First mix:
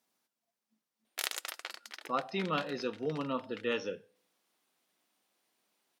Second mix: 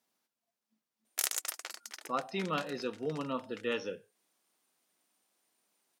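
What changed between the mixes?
background: add resonant high shelf 5000 Hz +7.5 dB, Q 1.5; reverb: off

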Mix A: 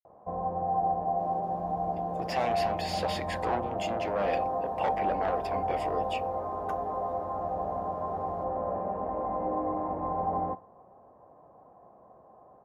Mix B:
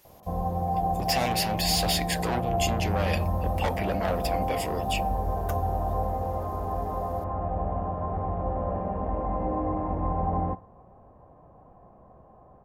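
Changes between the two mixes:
speech: entry -1.20 s; master: remove band-pass 720 Hz, Q 0.62

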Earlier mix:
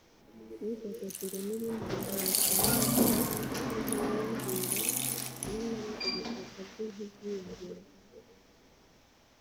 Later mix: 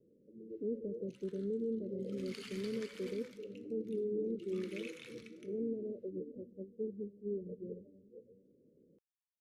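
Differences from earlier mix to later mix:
second sound: muted; master: add Chebyshev low-pass 1500 Hz, order 2

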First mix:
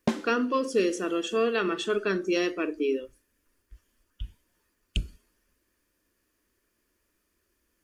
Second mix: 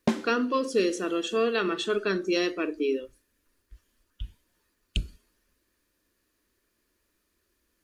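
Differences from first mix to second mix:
speech: add bell 4000 Hz +7.5 dB 0.24 oct; reverb: on, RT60 0.55 s

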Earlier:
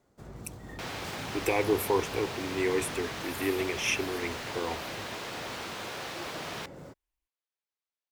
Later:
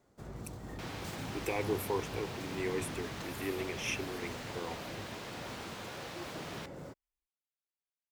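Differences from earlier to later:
speech -7.5 dB; second sound -7.0 dB

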